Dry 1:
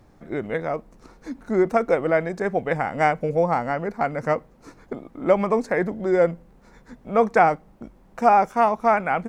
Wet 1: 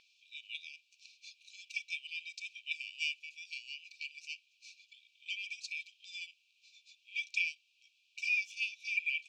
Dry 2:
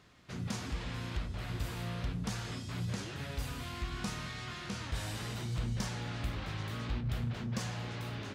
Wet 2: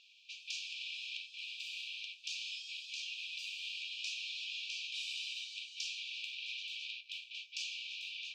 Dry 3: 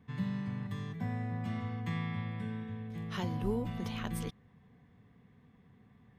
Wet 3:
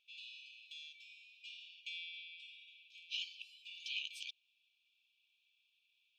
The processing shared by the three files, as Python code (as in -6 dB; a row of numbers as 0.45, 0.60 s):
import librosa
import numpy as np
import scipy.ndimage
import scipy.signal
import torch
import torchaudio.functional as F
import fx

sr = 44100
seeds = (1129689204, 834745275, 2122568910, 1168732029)

y = fx.brickwall_highpass(x, sr, low_hz=2300.0)
y = fx.air_absorb(y, sr, metres=180.0)
y = y * 10.0 ** (11.0 / 20.0)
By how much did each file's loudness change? -16.0, -2.5, -9.0 LU